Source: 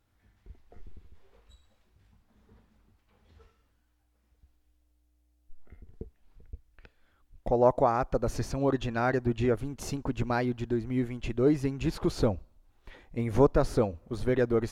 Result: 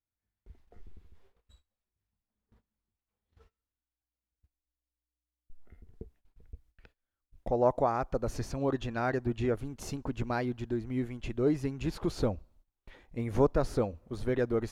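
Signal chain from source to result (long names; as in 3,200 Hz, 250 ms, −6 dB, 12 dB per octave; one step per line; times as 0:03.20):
noise gate −56 dBFS, range −21 dB
level −3.5 dB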